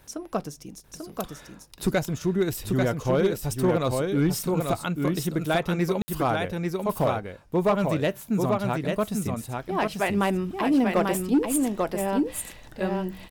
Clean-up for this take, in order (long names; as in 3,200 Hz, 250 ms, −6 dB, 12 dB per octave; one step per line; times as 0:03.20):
clipped peaks rebuilt −15 dBFS
ambience match 0:06.02–0:06.08
echo removal 841 ms −4 dB